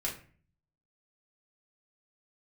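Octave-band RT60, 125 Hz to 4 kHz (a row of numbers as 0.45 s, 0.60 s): 0.85 s, 0.65 s, 0.45 s, 0.40 s, 0.45 s, 0.30 s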